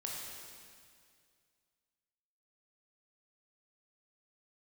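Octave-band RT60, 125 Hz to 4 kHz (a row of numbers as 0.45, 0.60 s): 2.4, 2.3, 2.2, 2.1, 2.1, 2.1 s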